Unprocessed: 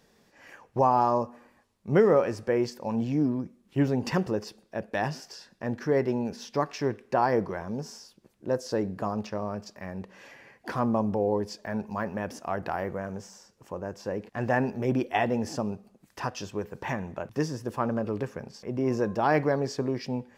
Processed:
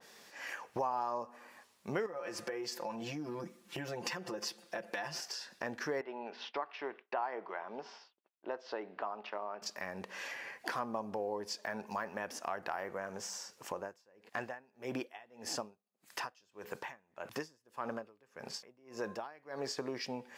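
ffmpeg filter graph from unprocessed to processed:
ffmpeg -i in.wav -filter_complex "[0:a]asettb=1/sr,asplit=3[link_01][link_02][link_03];[link_01]atrim=end=2.064[link_04];[link_02]atrim=start=2.06:end=5.21,asetpts=PTS-STARTPTS,afade=type=in:duration=0.004:curve=qsin,afade=type=out:start_time=3.146:duration=0.004:curve=qsin,aecho=1:1:5.8:0.98,atrim=end_sample=138915,acompressor=threshold=-33dB:ratio=4:attack=3.2:release=140:knee=1:detection=peak[link_05];[link_03]atrim=start=5.206[link_06];[link_04][link_05]acrossfade=duration=0.004:curve1=hsin:curve2=qsin[link_07];[link_07][link_06]acrossfade=duration=0.004:curve1=qsin:curve2=hsin,asettb=1/sr,asplit=3[link_08][link_09][link_10];[link_08]atrim=end=6.014[link_11];[link_09]atrim=start=6.01:end=9.62,asetpts=PTS-STARTPTS,afade=type=in:duration=0.004:curve=qsin,afade=type=out:start_time=3.606:duration=0.004:curve=qsin,agate=range=-33dB:threshold=-46dB:ratio=3:release=100:detection=peak,highpass=450,equalizer=frequency=510:width_type=q:width=4:gain=-7,equalizer=frequency=1100:width_type=q:width=4:gain=-3,equalizer=frequency=1700:width_type=q:width=4:gain=-7,equalizer=frequency=2400:width_type=q:width=4:gain=-4,lowpass=frequency=3000:width=0.5412,lowpass=frequency=3000:width=1.3066[link_12];[link_10]atrim=start=9.616[link_13];[link_11][link_12]acrossfade=duration=0.004:curve1=hsin:curve2=qsin[link_14];[link_14][link_13]acrossfade=duration=0.004:curve1=qsin:curve2=hsin,asettb=1/sr,asplit=3[link_15][link_16][link_17];[link_15]atrim=end=13.804[link_18];[link_16]atrim=start=13.8:end=19.77,asetpts=PTS-STARTPTS,afade=type=in:duration=0.004:curve=qsin,afade=type=out:start_time=5.966:duration=0.004:curve=qsin,bandreject=frequency=5800:width=20,aeval=exprs='val(0)*pow(10,-37*(0.5-0.5*cos(2*PI*1.7*n/s))/20)':channel_layout=same[link_19];[link_17]atrim=start=19.766[link_20];[link_18][link_19]acrossfade=duration=0.004:curve1=hsin:curve2=qsin[link_21];[link_21][link_20]acrossfade=duration=0.004:curve1=qsin:curve2=hsin,highpass=frequency=1200:poles=1,acompressor=threshold=-49dB:ratio=3,adynamicequalizer=threshold=0.00126:dfrequency=2200:dqfactor=0.7:tfrequency=2200:tqfactor=0.7:attack=5:release=100:ratio=0.375:range=2:mode=cutabove:tftype=highshelf,volume=10.5dB" out.wav

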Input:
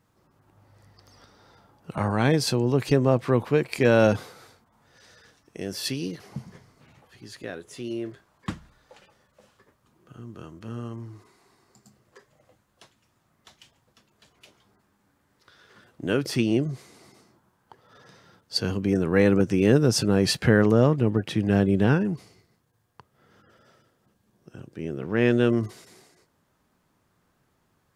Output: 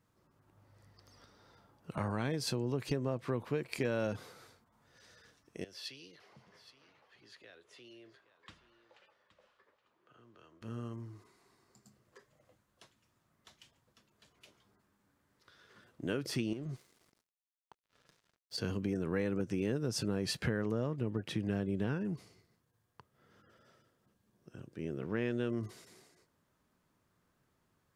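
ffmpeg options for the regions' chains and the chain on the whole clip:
ffmpeg -i in.wav -filter_complex "[0:a]asettb=1/sr,asplit=3[link_01][link_02][link_03];[link_01]atrim=end=5.644[link_04];[link_02]atrim=start=5.64:end=10.62,asetpts=PTS-STARTPTS,afade=type=in:duration=0.004:curve=qsin,afade=type=out:start_time=4.976:duration=0.004:curve=qsin,acrossover=split=390 4400:gain=0.141 1 0.141[link_05][link_06][link_07];[link_05][link_06][link_07]amix=inputs=3:normalize=0,acrossover=split=120|3000[link_08][link_09][link_10];[link_09]acompressor=threshold=-53dB:ratio=2.5:attack=3.2:release=140:knee=2.83:detection=peak[link_11];[link_08][link_11][link_10]amix=inputs=3:normalize=0,aecho=1:1:821:0.168,atrim=end_sample=219618[link_12];[link_03]atrim=start=10.616[link_13];[link_04][link_12]acrossfade=duration=0.004:curve1=hsin:curve2=qsin[link_14];[link_14][link_13]acrossfade=duration=0.004:curve1=qsin:curve2=hsin,asettb=1/sr,asplit=3[link_15][link_16][link_17];[link_15]atrim=end=16.534[link_18];[link_16]atrim=start=16.53:end=18.58,asetpts=PTS-STARTPTS,afade=type=in:duration=0.004:curve=qsin,afade=type=out:start_time=2.046:duration=0.004:curve=qsin,acompressor=threshold=-28dB:ratio=5:attack=3.2:release=140:knee=1:detection=peak,aeval=exprs='sgn(val(0))*max(abs(val(0))-0.00282,0)':channel_layout=same[link_19];[link_17]atrim=start=18.576[link_20];[link_18][link_19]acrossfade=duration=0.004:curve1=hsin:curve2=qsin[link_21];[link_21][link_20]acrossfade=duration=0.004:curve1=qsin:curve2=hsin,equalizer=frequency=790:width=6.3:gain=-4,acompressor=threshold=-24dB:ratio=4,volume=-7dB" out.wav

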